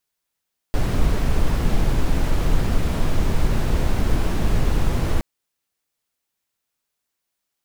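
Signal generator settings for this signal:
noise brown, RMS −17 dBFS 4.47 s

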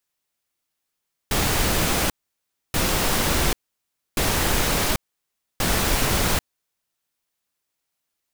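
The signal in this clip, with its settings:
noise bursts pink, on 0.79 s, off 0.64 s, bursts 4, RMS −21 dBFS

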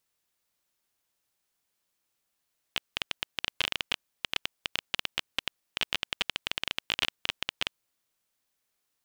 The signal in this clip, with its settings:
Geiger counter clicks 15 per second −9.5 dBFS 5.09 s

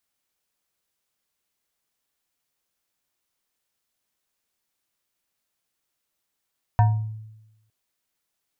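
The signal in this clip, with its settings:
two-operator FM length 0.91 s, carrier 109 Hz, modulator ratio 7.63, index 0.71, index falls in 0.55 s exponential, decay 0.99 s, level −11.5 dB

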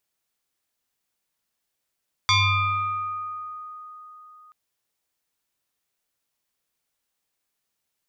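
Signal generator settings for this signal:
two-operator FM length 2.23 s, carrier 1,240 Hz, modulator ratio 0.92, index 3.4, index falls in 1.89 s exponential, decay 4.01 s, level −15 dB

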